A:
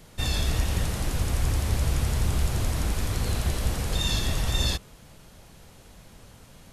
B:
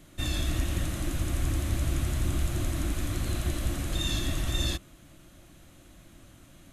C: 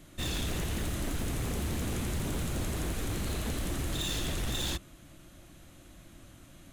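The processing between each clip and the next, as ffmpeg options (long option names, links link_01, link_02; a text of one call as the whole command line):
ffmpeg -i in.wav -af "superequalizer=6b=2.51:7b=0.398:9b=0.501:14b=0.562,volume=-3.5dB" out.wav
ffmpeg -i in.wav -af "aeval=exprs='0.0422*(abs(mod(val(0)/0.0422+3,4)-2)-1)':channel_layout=same" out.wav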